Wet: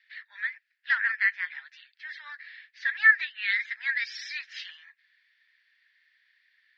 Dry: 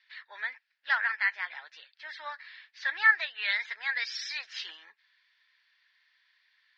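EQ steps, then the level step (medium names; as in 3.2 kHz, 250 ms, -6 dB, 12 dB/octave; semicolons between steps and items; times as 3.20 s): resonant high-pass 1.8 kHz, resonance Q 2.6; -4.5 dB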